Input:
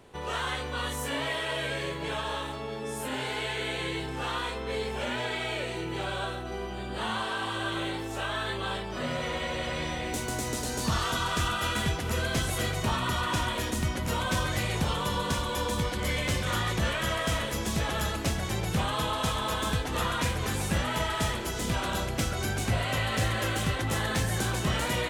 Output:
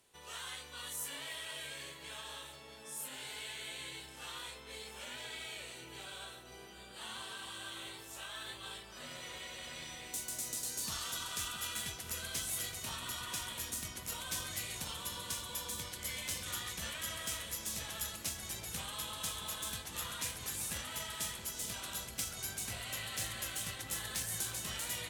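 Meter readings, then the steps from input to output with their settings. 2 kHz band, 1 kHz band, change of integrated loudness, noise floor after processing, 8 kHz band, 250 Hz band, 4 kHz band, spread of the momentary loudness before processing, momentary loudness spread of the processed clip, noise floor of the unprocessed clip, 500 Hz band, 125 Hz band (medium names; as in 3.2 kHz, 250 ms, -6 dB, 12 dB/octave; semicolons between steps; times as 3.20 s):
-13.0 dB, -16.5 dB, -10.0 dB, -53 dBFS, -1.5 dB, -19.5 dB, -8.0 dB, 5 LU, 9 LU, -36 dBFS, -19.5 dB, -20.0 dB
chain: Chebyshev shaper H 3 -19 dB, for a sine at -16.5 dBFS; pre-emphasis filter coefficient 0.9; filtered feedback delay 674 ms, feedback 85%, low-pass 1 kHz, level -9 dB; trim +1 dB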